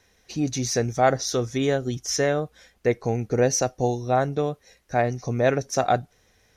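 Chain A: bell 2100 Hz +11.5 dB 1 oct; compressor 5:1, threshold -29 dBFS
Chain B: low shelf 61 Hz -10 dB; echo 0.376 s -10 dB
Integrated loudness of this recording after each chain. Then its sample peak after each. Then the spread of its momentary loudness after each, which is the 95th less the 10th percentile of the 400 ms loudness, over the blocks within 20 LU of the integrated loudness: -33.0, -24.5 LUFS; -16.0, -8.0 dBFS; 5, 7 LU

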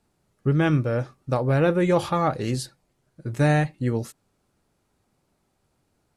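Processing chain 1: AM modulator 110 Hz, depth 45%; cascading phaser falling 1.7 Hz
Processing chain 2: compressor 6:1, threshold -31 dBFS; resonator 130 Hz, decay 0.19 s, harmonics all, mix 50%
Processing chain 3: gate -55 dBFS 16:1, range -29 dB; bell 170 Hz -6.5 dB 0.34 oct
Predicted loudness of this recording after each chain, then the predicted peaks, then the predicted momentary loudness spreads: -27.5, -38.5, -24.5 LUFS; -11.5, -23.5, -8.5 dBFS; 11, 7, 11 LU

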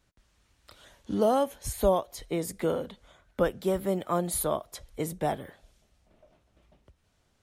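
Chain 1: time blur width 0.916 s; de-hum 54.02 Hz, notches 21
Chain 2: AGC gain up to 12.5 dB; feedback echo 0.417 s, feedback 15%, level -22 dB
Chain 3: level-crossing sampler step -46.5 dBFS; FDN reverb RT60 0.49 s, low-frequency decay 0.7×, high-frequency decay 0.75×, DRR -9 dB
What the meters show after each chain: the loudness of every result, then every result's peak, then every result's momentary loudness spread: -38.0, -18.5, -20.5 LUFS; -23.0, -2.5, -2.5 dBFS; 13, 13, 10 LU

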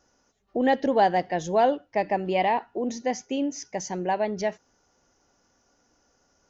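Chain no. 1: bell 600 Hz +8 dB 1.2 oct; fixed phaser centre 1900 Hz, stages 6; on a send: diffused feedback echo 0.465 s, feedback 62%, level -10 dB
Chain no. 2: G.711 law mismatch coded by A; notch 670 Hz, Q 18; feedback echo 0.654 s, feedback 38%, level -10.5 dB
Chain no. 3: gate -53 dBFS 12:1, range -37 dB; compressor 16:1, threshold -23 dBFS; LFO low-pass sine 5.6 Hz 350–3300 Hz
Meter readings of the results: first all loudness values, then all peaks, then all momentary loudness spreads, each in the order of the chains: -26.0, -26.5, -27.5 LUFS; -8.5, -10.0, -11.5 dBFS; 20, 15, 6 LU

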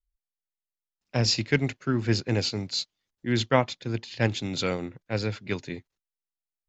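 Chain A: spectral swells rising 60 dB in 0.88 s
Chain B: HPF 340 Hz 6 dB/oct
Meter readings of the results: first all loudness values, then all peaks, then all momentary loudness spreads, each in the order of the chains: -25.0, -30.0 LUFS; -3.5, -7.0 dBFS; 11, 12 LU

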